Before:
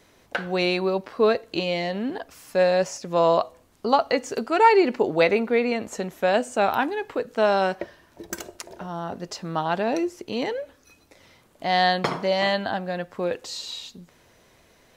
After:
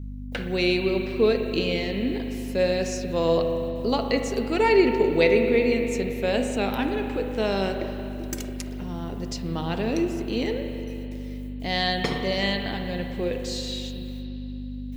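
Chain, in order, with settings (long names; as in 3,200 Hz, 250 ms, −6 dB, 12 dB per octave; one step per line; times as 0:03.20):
background noise violet −64 dBFS
noise gate with hold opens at −44 dBFS
mains hum 50 Hz, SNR 10 dB
flat-topped bell 990 Hz −9.5 dB
spring reverb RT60 2.9 s, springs 36/56 ms, chirp 25 ms, DRR 5 dB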